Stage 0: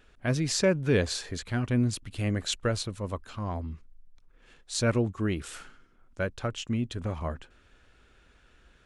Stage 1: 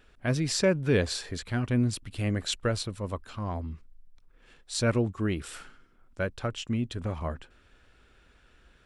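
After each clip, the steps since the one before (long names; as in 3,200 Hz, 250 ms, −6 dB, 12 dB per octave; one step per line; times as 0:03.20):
notch filter 6,500 Hz, Q 13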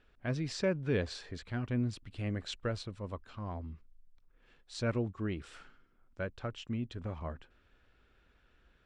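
high-frequency loss of the air 100 metres
level −7 dB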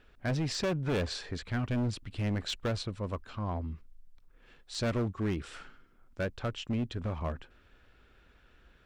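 gain into a clipping stage and back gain 33 dB
level +6 dB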